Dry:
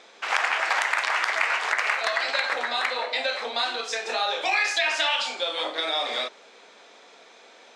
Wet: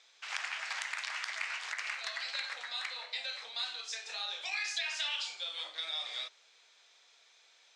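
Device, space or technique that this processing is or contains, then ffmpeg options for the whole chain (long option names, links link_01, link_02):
piezo pickup straight into a mixer: -af "lowpass=6000,aderivative,volume=-2.5dB"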